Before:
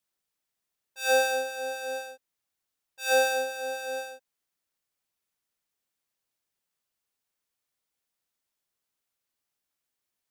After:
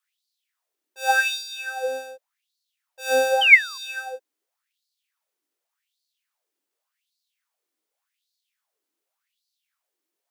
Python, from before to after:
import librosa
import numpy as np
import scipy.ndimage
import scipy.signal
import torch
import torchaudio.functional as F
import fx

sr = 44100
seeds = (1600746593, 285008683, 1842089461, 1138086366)

y = fx.spec_paint(x, sr, seeds[0], shape='fall', start_s=3.41, length_s=0.37, low_hz=1000.0, high_hz=3200.0, level_db=-20.0)
y = fx.filter_lfo_highpass(y, sr, shape='sine', hz=0.87, low_hz=300.0, high_hz=4400.0, q=5.9)